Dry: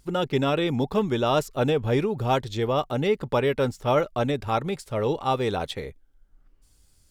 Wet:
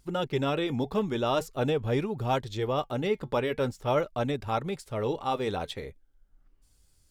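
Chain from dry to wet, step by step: flange 0.46 Hz, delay 0.8 ms, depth 3.4 ms, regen -82%

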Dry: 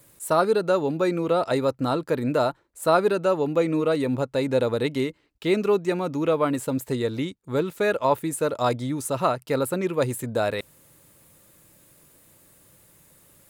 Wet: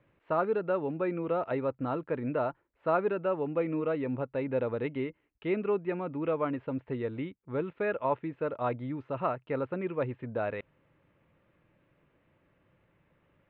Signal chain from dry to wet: steep low-pass 2800 Hz 36 dB/oct; gain -8 dB

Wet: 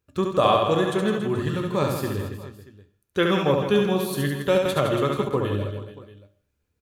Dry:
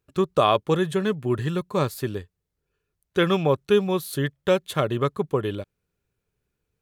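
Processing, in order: reverse bouncing-ball echo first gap 70 ms, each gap 1.3×, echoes 5; on a send at -8 dB: reverb RT60 0.55 s, pre-delay 3 ms; 4.65–5.29 on the sum: three-band squash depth 70%; gain -1.5 dB

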